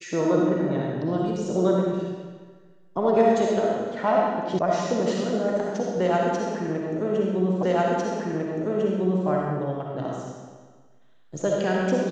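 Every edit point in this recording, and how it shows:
4.59 sound cut off
7.63 repeat of the last 1.65 s

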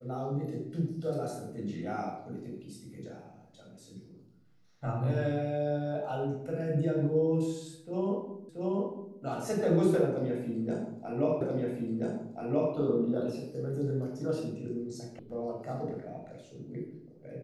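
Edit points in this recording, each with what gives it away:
8.49 repeat of the last 0.68 s
11.41 repeat of the last 1.33 s
15.19 sound cut off

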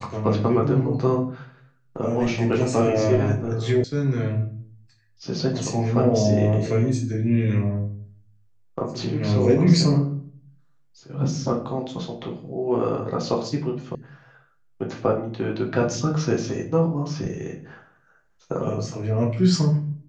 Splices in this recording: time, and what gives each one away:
3.84 sound cut off
13.95 sound cut off

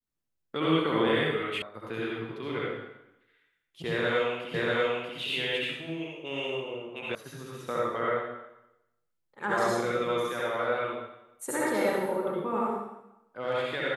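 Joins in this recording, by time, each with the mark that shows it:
1.62 sound cut off
4.54 repeat of the last 0.64 s
7.15 sound cut off

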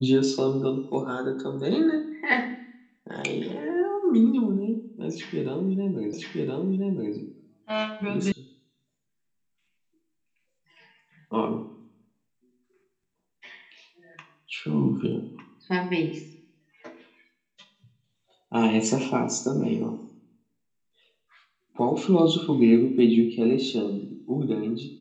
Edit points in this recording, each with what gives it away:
6.13 repeat of the last 1.02 s
8.32 sound cut off

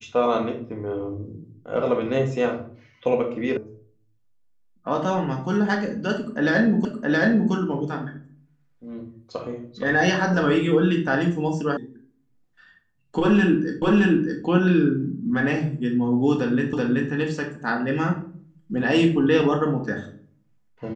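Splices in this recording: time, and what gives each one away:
3.57 sound cut off
6.85 repeat of the last 0.67 s
11.77 sound cut off
13.82 repeat of the last 0.62 s
16.73 repeat of the last 0.38 s

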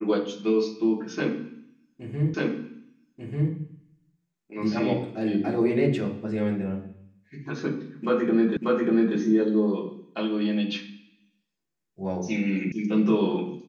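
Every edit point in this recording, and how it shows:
2.34 repeat of the last 1.19 s
8.57 repeat of the last 0.59 s
12.72 sound cut off

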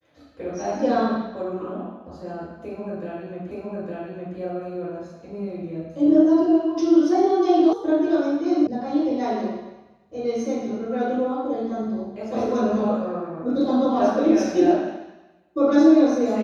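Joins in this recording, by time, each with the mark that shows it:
3.51 repeat of the last 0.86 s
7.73 sound cut off
8.67 sound cut off

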